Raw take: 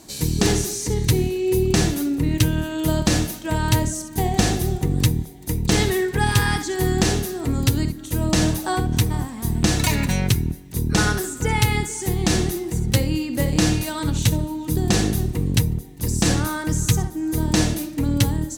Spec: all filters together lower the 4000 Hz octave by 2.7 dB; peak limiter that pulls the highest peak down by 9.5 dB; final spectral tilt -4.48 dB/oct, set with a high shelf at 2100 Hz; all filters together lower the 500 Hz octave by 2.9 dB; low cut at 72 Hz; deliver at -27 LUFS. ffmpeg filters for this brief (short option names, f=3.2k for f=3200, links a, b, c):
-af "highpass=72,equalizer=f=500:t=o:g=-4.5,highshelf=f=2.1k:g=4,equalizer=f=4k:t=o:g=-7.5,volume=-2.5dB,alimiter=limit=-16dB:level=0:latency=1"